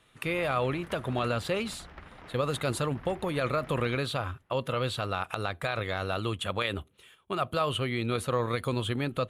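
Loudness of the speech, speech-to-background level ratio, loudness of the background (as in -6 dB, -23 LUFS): -31.0 LUFS, 18.0 dB, -49.0 LUFS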